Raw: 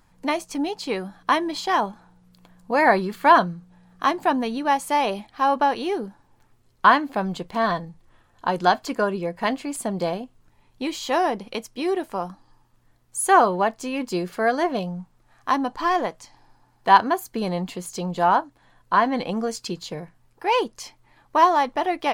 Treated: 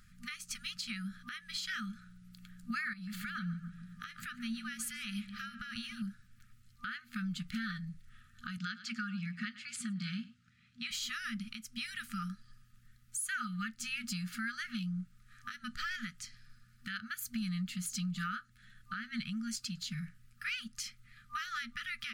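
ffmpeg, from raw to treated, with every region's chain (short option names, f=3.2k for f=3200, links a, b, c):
-filter_complex "[0:a]asettb=1/sr,asplit=3[a][b][c];[a]atrim=end=2.934[d];[b]atrim=start=2.93:end=6.02,asetpts=PTS-STARTPTS,afade=t=in:d=0.004:c=qsin,afade=t=out:st=3.086:d=0.004:c=qsin,acompressor=threshold=-28dB:ratio=10:attack=3.2:release=140:knee=1:detection=peak,asplit=2[e][f];[f]adelay=143,lowpass=f=1.7k:p=1,volume=-10dB,asplit=2[g][h];[h]adelay=143,lowpass=f=1.7k:p=1,volume=0.54,asplit=2[i][j];[j]adelay=143,lowpass=f=1.7k:p=1,volume=0.54,asplit=2[k][l];[l]adelay=143,lowpass=f=1.7k:p=1,volume=0.54,asplit=2[m][n];[n]adelay=143,lowpass=f=1.7k:p=1,volume=0.54,asplit=2[o][p];[p]adelay=143,lowpass=f=1.7k:p=1,volume=0.54[q];[e][g][i][k][m][o][q]amix=inputs=7:normalize=0,atrim=end_sample=136269[r];[c]atrim=start=6.016[s];[d][r]acrossfade=d=0.004:c1=hsin:c2=qsin[t];[t][s]acrossfade=d=0.004:c1=qsin:c2=hsin,asettb=1/sr,asplit=3[u][v][w];[u]atrim=end=8.574[x];[v]atrim=start=8.57:end=10.91,asetpts=PTS-STARTPTS,afade=t=in:d=0.004:c=qsin,afade=t=out:st=2.336:d=0.004:c=qsin,highpass=140,lowpass=5.5k,aecho=1:1:103:0.106,atrim=end_sample=103194[y];[w]atrim=start=10.906[z];[x][y]acrossfade=d=0.004:c1=hsin:c2=qsin[aa];[aa][z]acrossfade=d=0.004:c1=qsin:c2=hsin,afftfilt=real='re*(1-between(b*sr/4096,240,1200))':imag='im*(1-between(b*sr/4096,240,1200))':win_size=4096:overlap=0.75,acompressor=threshold=-35dB:ratio=4,alimiter=level_in=4dB:limit=-24dB:level=0:latency=1:release=209,volume=-4dB"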